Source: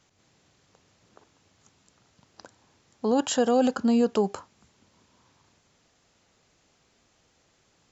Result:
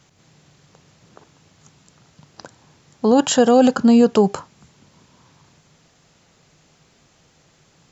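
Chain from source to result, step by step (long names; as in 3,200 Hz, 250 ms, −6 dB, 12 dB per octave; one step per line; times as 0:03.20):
parametric band 150 Hz +10 dB 0.43 octaves
level +8.5 dB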